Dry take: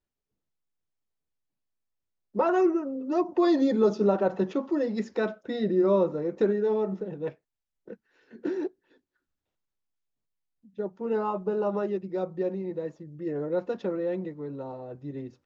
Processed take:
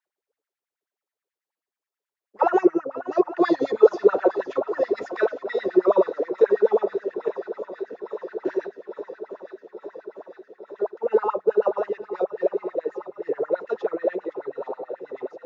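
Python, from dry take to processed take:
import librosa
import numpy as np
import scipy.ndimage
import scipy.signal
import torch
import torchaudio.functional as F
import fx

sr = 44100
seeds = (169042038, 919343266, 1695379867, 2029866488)

y = fx.octave_divider(x, sr, octaves=1, level_db=-2.0)
y = fx.echo_swing(y, sr, ms=856, ratio=1.5, feedback_pct=73, wet_db=-15.5)
y = fx.filter_lfo_highpass(y, sr, shape='sine', hz=9.3, low_hz=380.0, high_hz=2000.0, q=6.4)
y = F.gain(torch.from_numpy(y), -2.0).numpy()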